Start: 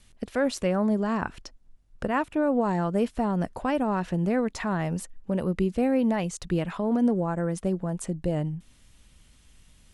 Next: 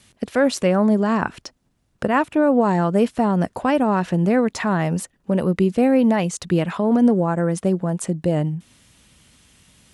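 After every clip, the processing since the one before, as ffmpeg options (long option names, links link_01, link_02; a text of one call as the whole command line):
ffmpeg -i in.wav -af "highpass=100,volume=7.5dB" out.wav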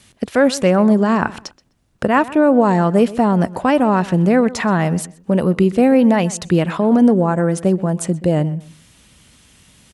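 ffmpeg -i in.wav -filter_complex "[0:a]asplit=2[link_01][link_02];[link_02]adelay=127,lowpass=frequency=3700:poles=1,volume=-18dB,asplit=2[link_03][link_04];[link_04]adelay=127,lowpass=frequency=3700:poles=1,volume=0.25[link_05];[link_01][link_03][link_05]amix=inputs=3:normalize=0,volume=4dB" out.wav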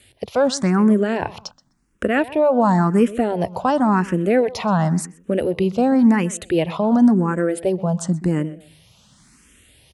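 ffmpeg -i in.wav -filter_complex "[0:a]asplit=2[link_01][link_02];[link_02]afreqshift=0.93[link_03];[link_01][link_03]amix=inputs=2:normalize=1" out.wav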